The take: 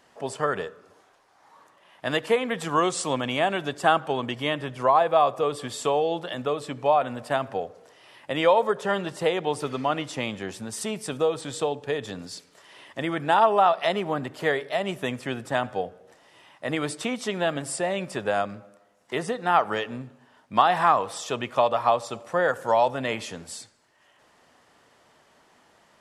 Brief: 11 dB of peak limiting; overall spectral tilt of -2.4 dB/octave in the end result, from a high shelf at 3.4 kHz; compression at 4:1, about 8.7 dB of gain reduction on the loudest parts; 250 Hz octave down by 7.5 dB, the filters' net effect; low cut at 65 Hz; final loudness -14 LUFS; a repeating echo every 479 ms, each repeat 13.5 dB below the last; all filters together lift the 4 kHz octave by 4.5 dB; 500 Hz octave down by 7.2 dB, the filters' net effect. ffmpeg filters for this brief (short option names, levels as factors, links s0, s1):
-af "highpass=65,equalizer=f=250:t=o:g=-7.5,equalizer=f=500:t=o:g=-8,highshelf=f=3400:g=4,equalizer=f=4000:t=o:g=3.5,acompressor=threshold=0.0501:ratio=4,alimiter=limit=0.0708:level=0:latency=1,aecho=1:1:479|958:0.211|0.0444,volume=11.2"